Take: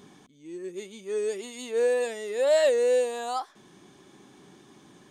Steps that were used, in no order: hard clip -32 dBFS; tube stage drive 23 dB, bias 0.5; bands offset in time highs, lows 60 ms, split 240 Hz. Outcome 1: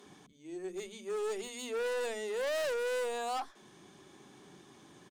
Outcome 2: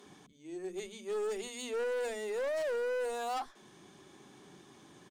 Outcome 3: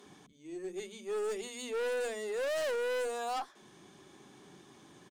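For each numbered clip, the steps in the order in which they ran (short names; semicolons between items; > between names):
tube stage > hard clip > bands offset in time; tube stage > bands offset in time > hard clip; bands offset in time > tube stage > hard clip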